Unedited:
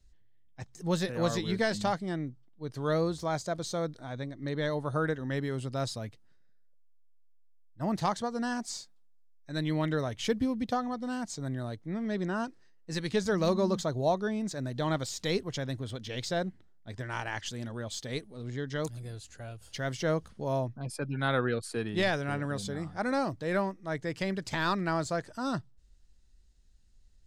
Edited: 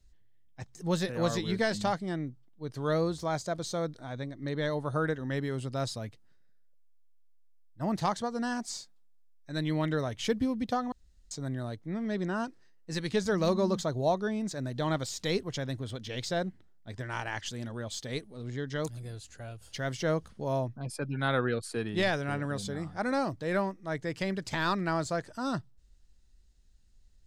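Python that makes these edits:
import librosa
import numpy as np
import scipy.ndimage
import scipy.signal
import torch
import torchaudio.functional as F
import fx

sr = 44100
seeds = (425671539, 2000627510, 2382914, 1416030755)

y = fx.edit(x, sr, fx.room_tone_fill(start_s=10.92, length_s=0.39), tone=tone)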